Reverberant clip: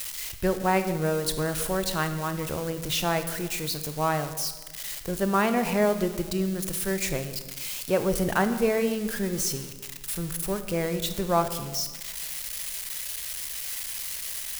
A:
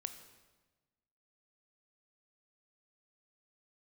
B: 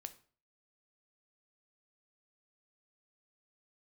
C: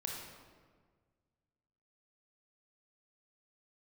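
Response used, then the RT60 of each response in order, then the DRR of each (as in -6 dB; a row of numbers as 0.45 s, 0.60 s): A; 1.2 s, 0.45 s, 1.6 s; 8.5 dB, 10.0 dB, -1.0 dB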